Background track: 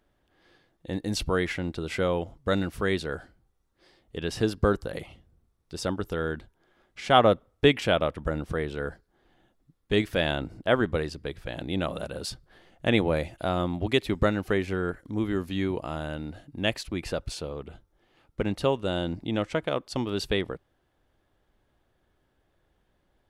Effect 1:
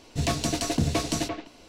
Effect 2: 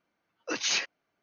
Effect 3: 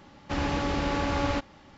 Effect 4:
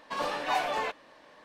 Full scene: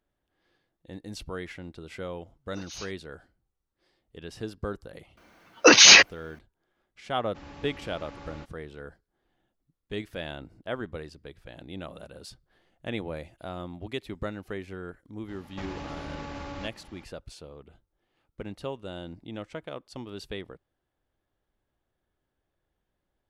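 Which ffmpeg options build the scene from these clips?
ffmpeg -i bed.wav -i cue0.wav -i cue1.wav -i cue2.wav -filter_complex "[2:a]asplit=2[link_01][link_02];[3:a]asplit=2[link_03][link_04];[0:a]volume=-10.5dB[link_05];[link_01]equalizer=frequency=2100:width=1.4:gain=-9[link_06];[link_02]alimiter=level_in=23.5dB:limit=-1dB:release=50:level=0:latency=1[link_07];[link_04]acompressor=threshold=-34dB:ratio=6:attack=3.2:release=140:knee=1:detection=peak[link_08];[link_06]atrim=end=1.22,asetpts=PTS-STARTPTS,volume=-12dB,afade=type=in:duration=0.004:curve=hsin,afade=type=out:start_time=1.216:duration=0.004:curve=hsin,adelay=2060[link_09];[link_07]atrim=end=1.22,asetpts=PTS-STARTPTS,volume=-2dB,afade=type=in:duration=0.004:curve=hsin,afade=type=out:start_time=1.216:duration=0.004:curve=hsin,adelay=227997S[link_10];[link_03]atrim=end=1.77,asetpts=PTS-STARTPTS,volume=-17.5dB,afade=type=in:duration=0.004:curve=hsin,afade=type=out:start_time=1.766:duration=0.004:curve=hsin,adelay=7050[link_11];[link_08]atrim=end=1.77,asetpts=PTS-STARTPTS,volume=-1dB,afade=type=in:duration=0.004:curve=hsin,afade=type=out:start_time=1.766:duration=0.004:curve=hsin,adelay=15280[link_12];[link_05][link_09][link_10][link_11][link_12]amix=inputs=5:normalize=0" out.wav

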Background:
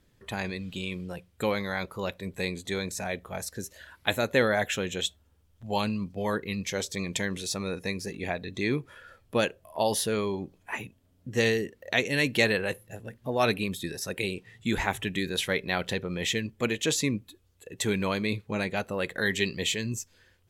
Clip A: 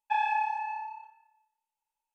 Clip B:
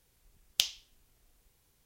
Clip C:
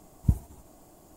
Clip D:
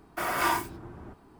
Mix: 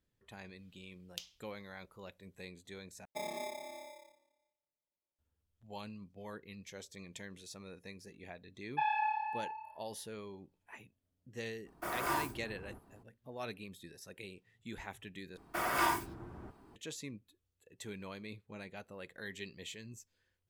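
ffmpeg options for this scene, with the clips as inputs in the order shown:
ffmpeg -i bed.wav -i cue0.wav -i cue1.wav -i cue2.wav -i cue3.wav -filter_complex "[1:a]asplit=2[link_01][link_02];[4:a]asplit=2[link_03][link_04];[0:a]volume=-18dB[link_05];[link_01]acrusher=samples=30:mix=1:aa=0.000001[link_06];[link_02]aresample=11025,aresample=44100[link_07];[link_03]equalizer=frequency=2800:width_type=o:width=2.2:gain=-5[link_08];[link_05]asplit=3[link_09][link_10][link_11];[link_09]atrim=end=3.054[link_12];[link_06]atrim=end=2.14,asetpts=PTS-STARTPTS,volume=-13.5dB[link_13];[link_10]atrim=start=5.186:end=15.374[link_14];[link_04]atrim=end=1.39,asetpts=PTS-STARTPTS,volume=-4.5dB[link_15];[link_11]atrim=start=16.756[link_16];[2:a]atrim=end=1.85,asetpts=PTS-STARTPTS,volume=-17dB,afade=type=in:duration=0.004:curve=hsin,afade=type=out:start_time=1.846:duration=0.004:curve=hsin,adelay=580[link_17];[link_07]atrim=end=2.14,asetpts=PTS-STARTPTS,volume=-5dB,afade=type=in:duration=0.004:curve=hsin,afade=type=out:start_time=2.136:duration=0.004:curve=hsin,adelay=8670[link_18];[link_08]atrim=end=1.39,asetpts=PTS-STARTPTS,volume=-6.5dB,afade=type=in:duration=0.02,afade=type=out:start_time=1.37:duration=0.02,adelay=11650[link_19];[link_12][link_13]acrossfade=duration=0.004:curve1=hsin:curve2=hsin[link_20];[link_20][link_14]acrossfade=duration=0.004:curve1=hsin:curve2=hsin[link_21];[link_21][link_15]acrossfade=duration=0.004:curve1=hsin:curve2=hsin[link_22];[link_22][link_16]acrossfade=duration=0.004:curve1=hsin:curve2=hsin[link_23];[link_23][link_17][link_18][link_19]amix=inputs=4:normalize=0" out.wav

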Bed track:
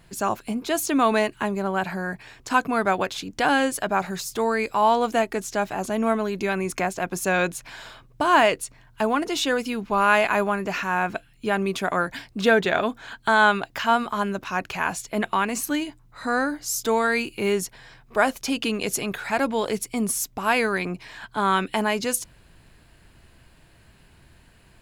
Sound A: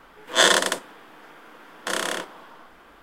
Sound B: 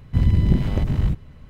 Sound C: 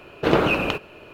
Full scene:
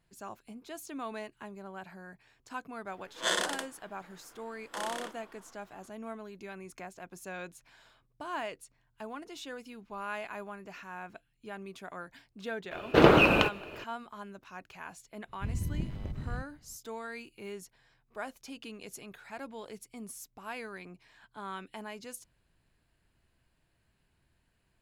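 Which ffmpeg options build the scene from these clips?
ffmpeg -i bed.wav -i cue0.wav -i cue1.wav -i cue2.wav -filter_complex "[0:a]volume=-19.5dB[link_01];[1:a]atrim=end=3.02,asetpts=PTS-STARTPTS,volume=-13dB,afade=type=in:duration=0.004:curve=hsin,afade=type=out:start_time=3.016:duration=0.004:curve=hsin,adelay=2870[link_02];[3:a]atrim=end=1.13,asetpts=PTS-STARTPTS,volume=-0.5dB,afade=type=in:duration=0.004:curve=hsin,afade=type=out:start_time=1.126:duration=0.004:curve=hsin,adelay=12710[link_03];[2:a]atrim=end=1.49,asetpts=PTS-STARTPTS,volume=-17dB,afade=type=in:duration=0.004:curve=hsin,afade=type=out:start_time=1.486:duration=0.004:curve=hsin,adelay=15280[link_04];[link_01][link_02][link_03][link_04]amix=inputs=4:normalize=0" out.wav

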